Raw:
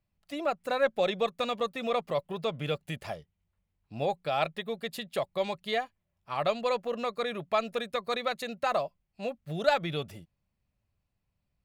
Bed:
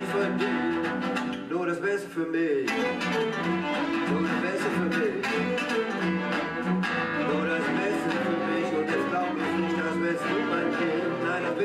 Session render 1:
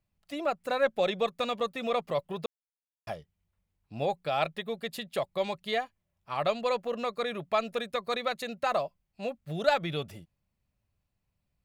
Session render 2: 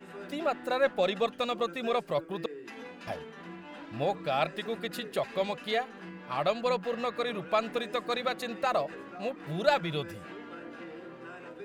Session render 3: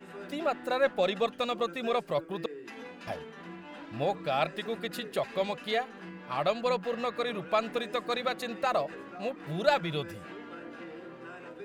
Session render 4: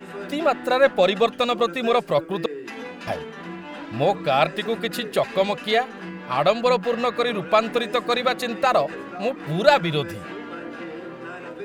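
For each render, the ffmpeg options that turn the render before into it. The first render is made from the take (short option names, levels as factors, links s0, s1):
-filter_complex "[0:a]asplit=3[s0][s1][s2];[s0]atrim=end=2.46,asetpts=PTS-STARTPTS,afade=t=out:st=2.456:d=0.004:c=hsin[s3];[s1]atrim=start=2.46:end=3.07,asetpts=PTS-STARTPTS,volume=0[s4];[s2]atrim=start=3.07,asetpts=PTS-STARTPTS,afade=t=in:d=0.004:c=hsin[s5];[s3][s4][s5]concat=n=3:v=0:a=1"
-filter_complex "[1:a]volume=0.133[s0];[0:a][s0]amix=inputs=2:normalize=0"
-af anull
-af "volume=2.99"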